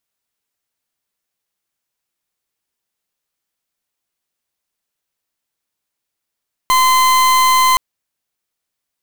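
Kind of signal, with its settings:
pulse wave 1,030 Hz, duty 40% −11.5 dBFS 1.07 s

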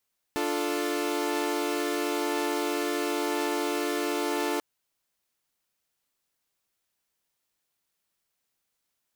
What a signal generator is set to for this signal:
held notes D4/F4/A4 saw, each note −28.5 dBFS 4.24 s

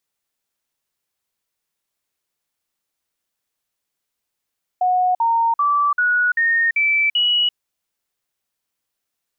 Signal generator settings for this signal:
stepped sweep 731 Hz up, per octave 3, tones 7, 0.34 s, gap 0.05 s −14 dBFS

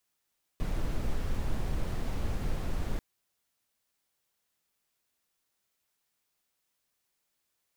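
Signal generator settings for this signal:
noise brown, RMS −29.5 dBFS 2.39 s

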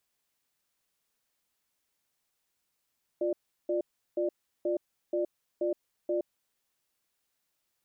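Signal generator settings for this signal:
tone pair in a cadence 351 Hz, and 594 Hz, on 0.12 s, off 0.36 s, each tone −29 dBFS 3.22 s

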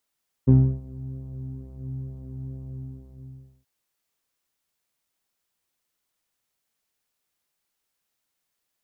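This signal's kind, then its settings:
subtractive patch with pulse-width modulation C3, detune 19 cents, sub −14 dB, filter lowpass, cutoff 150 Hz, Q 0.76, filter envelope 1 octave, filter decay 0.26 s, filter sustain 5%, attack 18 ms, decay 0.32 s, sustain −17.5 dB, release 1.02 s, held 2.16 s, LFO 2.2 Hz, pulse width 16%, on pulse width 9%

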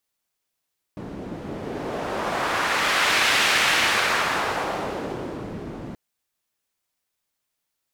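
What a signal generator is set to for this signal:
wind from filtered noise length 4.98 s, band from 240 Hz, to 2,300 Hz, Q 1, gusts 1, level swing 15 dB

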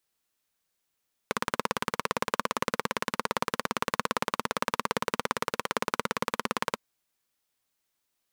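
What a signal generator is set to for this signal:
pulse-train model of a single-cylinder engine, steady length 5.48 s, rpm 2,100, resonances 230/480/1,000 Hz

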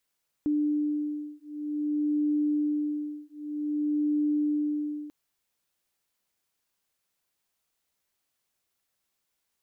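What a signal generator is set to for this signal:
two tones that beat 297 Hz, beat 0.53 Hz, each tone −28.5 dBFS 4.64 s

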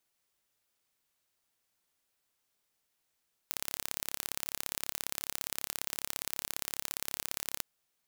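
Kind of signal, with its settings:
impulse train 34.7 per second, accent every 2, −6 dBFS 4.12 s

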